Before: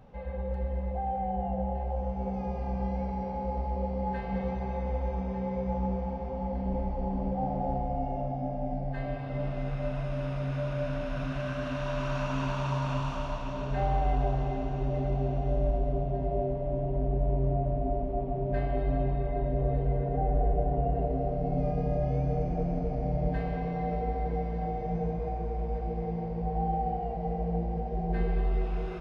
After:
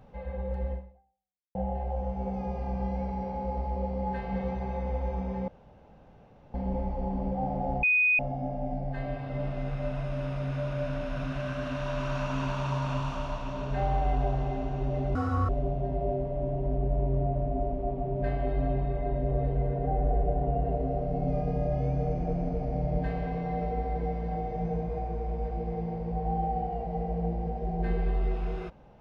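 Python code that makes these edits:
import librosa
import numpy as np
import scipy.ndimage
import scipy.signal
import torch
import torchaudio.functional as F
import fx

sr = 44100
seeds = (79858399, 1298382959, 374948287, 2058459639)

y = fx.edit(x, sr, fx.fade_out_span(start_s=0.73, length_s=0.82, curve='exp'),
    fx.room_tone_fill(start_s=5.48, length_s=1.06),
    fx.bleep(start_s=7.83, length_s=0.36, hz=2490.0, db=-20.0),
    fx.speed_span(start_s=15.15, length_s=0.64, speed=1.89), tone=tone)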